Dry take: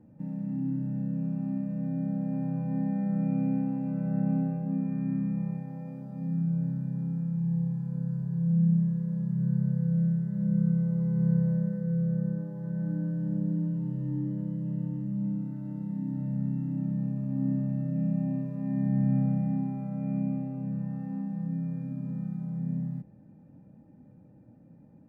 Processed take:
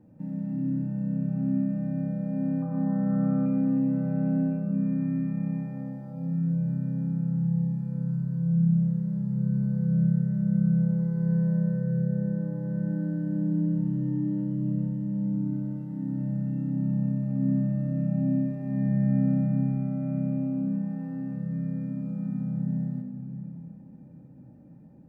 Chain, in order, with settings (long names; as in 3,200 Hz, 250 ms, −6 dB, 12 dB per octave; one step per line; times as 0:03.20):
0:02.62–0:03.46: low-pass with resonance 1,200 Hz, resonance Q 7.2
on a send: convolution reverb RT60 2.9 s, pre-delay 3 ms, DRR 3 dB